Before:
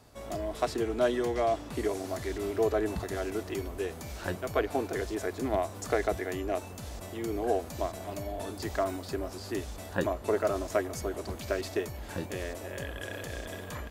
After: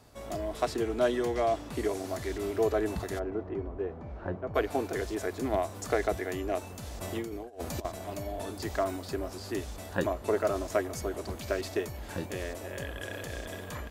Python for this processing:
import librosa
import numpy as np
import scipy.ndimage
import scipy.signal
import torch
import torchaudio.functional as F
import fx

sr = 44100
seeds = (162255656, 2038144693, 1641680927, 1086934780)

y = fx.lowpass(x, sr, hz=1100.0, slope=12, at=(3.18, 4.54), fade=0.02)
y = fx.over_compress(y, sr, threshold_db=-36.0, ratio=-0.5, at=(7.0, 7.85))